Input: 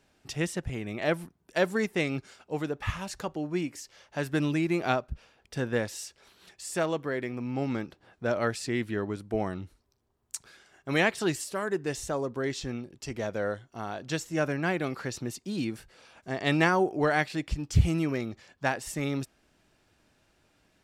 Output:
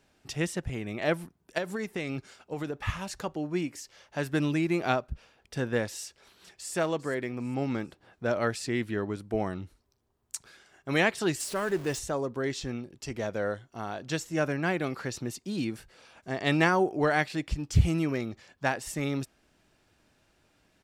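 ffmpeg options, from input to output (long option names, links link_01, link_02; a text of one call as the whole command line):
ffmpeg -i in.wav -filter_complex "[0:a]asettb=1/sr,asplit=3[link_01][link_02][link_03];[link_01]atrim=end=1.584[link_04];[link_02]atrim=start=1.58:end=2.84,asetpts=PTS-STARTPTS,afade=type=in:duration=0.004:curve=qsin,afade=type=out:start_time=1.256:duration=0.004:curve=qsin,acompressor=threshold=-28dB:ratio=12:attack=3.2:release=140:knee=1:detection=peak[link_05];[link_03]atrim=start=2.836[link_06];[link_04][link_05]acrossfade=duration=0.004:curve1=hsin:curve2=qsin[link_07];[link_07][link_06]acrossfade=duration=0.004:curve1=qsin:curve2=hsin,asplit=2[link_08][link_09];[link_09]afade=type=in:start_time=6.04:duration=0.01,afade=type=out:start_time=6.74:duration=0.01,aecho=0:1:400|800|1200:0.188365|0.0659277|0.0230747[link_10];[link_08][link_10]amix=inputs=2:normalize=0,asettb=1/sr,asplit=3[link_11][link_12][link_13];[link_11]atrim=end=11.404[link_14];[link_12]atrim=start=11.4:end=11.99,asetpts=PTS-STARTPTS,afade=type=in:duration=0.004:curve=qsin,afade=type=out:start_time=0.586:duration=0.004:curve=qsin,aeval=exprs='val(0)+0.5*0.0119*sgn(val(0))':channel_layout=same[link_15];[link_13]atrim=start=11.986[link_16];[link_14][link_15]acrossfade=duration=0.004:curve1=hsin:curve2=qsin[link_17];[link_17][link_16]acrossfade=duration=0.004:curve1=qsin:curve2=hsin" out.wav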